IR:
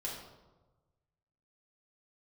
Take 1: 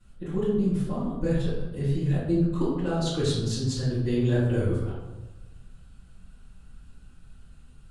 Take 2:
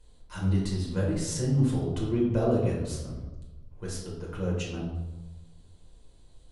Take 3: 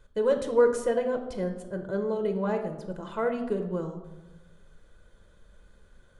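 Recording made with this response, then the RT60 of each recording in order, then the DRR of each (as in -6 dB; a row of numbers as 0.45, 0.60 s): 2; 1.2, 1.2, 1.2 s; -14.0, -4.0, 5.5 dB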